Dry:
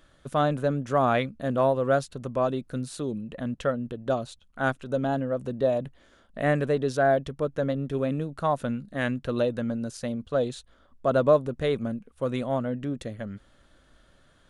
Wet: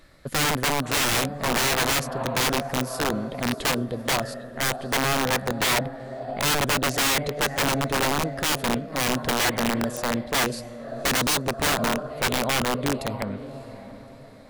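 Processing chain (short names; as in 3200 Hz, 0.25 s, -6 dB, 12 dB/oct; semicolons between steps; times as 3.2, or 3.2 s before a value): diffused feedback echo 0.612 s, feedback 41%, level -13 dB; wrapped overs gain 22 dB; formant shift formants +3 st; gain +5 dB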